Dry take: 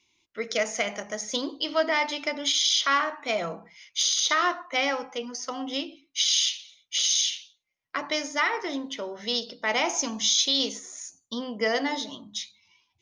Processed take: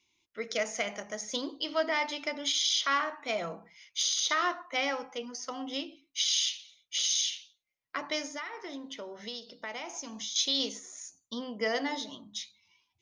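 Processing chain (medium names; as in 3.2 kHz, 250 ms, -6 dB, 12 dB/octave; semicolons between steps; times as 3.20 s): 8.27–10.36 s: compression 4:1, threshold -33 dBFS, peak gain reduction 11.5 dB; trim -5 dB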